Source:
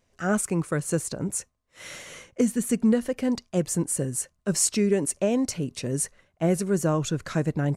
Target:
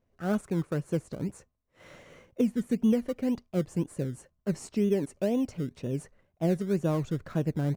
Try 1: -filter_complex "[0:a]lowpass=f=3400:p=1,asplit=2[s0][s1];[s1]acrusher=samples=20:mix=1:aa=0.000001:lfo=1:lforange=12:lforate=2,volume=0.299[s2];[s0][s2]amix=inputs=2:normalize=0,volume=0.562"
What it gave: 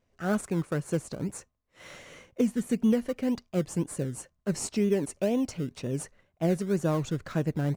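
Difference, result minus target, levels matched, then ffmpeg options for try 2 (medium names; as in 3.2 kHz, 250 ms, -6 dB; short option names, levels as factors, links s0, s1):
4 kHz band +4.0 dB
-filter_complex "[0:a]lowpass=f=940:p=1,asplit=2[s0][s1];[s1]acrusher=samples=20:mix=1:aa=0.000001:lfo=1:lforange=12:lforate=2,volume=0.299[s2];[s0][s2]amix=inputs=2:normalize=0,volume=0.562"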